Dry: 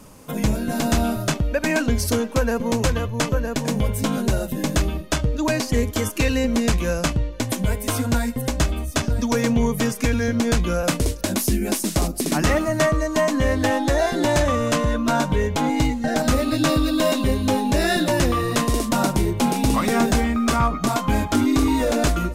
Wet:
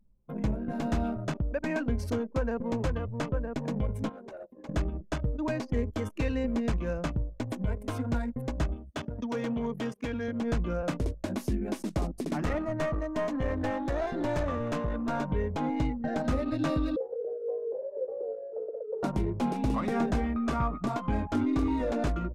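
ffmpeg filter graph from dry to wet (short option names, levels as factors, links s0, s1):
-filter_complex "[0:a]asettb=1/sr,asplit=3[s0][s1][s2];[s0]atrim=end=4.094[s3];[s1]atrim=start=4.09:end=4.69,asetpts=PTS-STARTPTS,afade=t=in:d=0.004:c=qsin,afade=t=out:st=0.596:d=0.004:c=qsin,highpass=470,asoftclip=type=hard:threshold=0.0447[s4];[s2]atrim=start=4.686[s5];[s3][s4]acrossfade=d=0.004:c1=hsin:c2=qsin[s6];[s6][s5]acrossfade=d=0.004:c1=qsin:c2=hsin,asettb=1/sr,asplit=3[s7][s8][s9];[s7]atrim=end=8.764[s10];[s8]atrim=start=8.76:end=10.42,asetpts=PTS-STARTPTS,afade=t=in:d=0.004:c=qsin,afade=t=out:st=1.656:d=0.004:c=qsin,highpass=f=180:p=1,equalizer=f=3200:t=o:w=0.26:g=8,asoftclip=type=hard:threshold=0.133[s11];[s9]atrim=start=10.416[s12];[s10][s11]acrossfade=d=0.004:c1=hsin:c2=qsin[s13];[s13][s12]acrossfade=d=0.004:c1=qsin:c2=hsin,asettb=1/sr,asplit=3[s14][s15][s16];[s14]atrim=end=12.364[s17];[s15]atrim=start=12.36:end=15.22,asetpts=PTS-STARTPTS,afade=t=in:d=0.004:c=qsin,afade=t=out:st=2.856:d=0.004:c=qsin,highshelf=f=12000:g=6,aeval=exprs='clip(val(0),-1,0.0944)':c=same[s18];[s16]atrim=start=15.216[s19];[s17][s18]acrossfade=d=0.004:c1=hsin:c2=qsin[s20];[s20][s19]acrossfade=d=0.004:c1=qsin:c2=hsin,asettb=1/sr,asplit=3[s21][s22][s23];[s21]atrim=end=16.964[s24];[s22]atrim=start=16.96:end=19.03,asetpts=PTS-STARTPTS,afade=t=in:d=0.004:c=qsin,afade=t=out:st=2.066:d=0.004:c=qsin,asuperpass=centerf=280:order=4:qfactor=1.9,afreqshift=210[s25];[s23]atrim=start=19.026[s26];[s24][s25]acrossfade=d=0.004:c1=hsin:c2=qsin[s27];[s27][s26]acrossfade=d=0.004:c1=qsin:c2=hsin,anlmdn=100,lowpass=f=1400:p=1,volume=0.376"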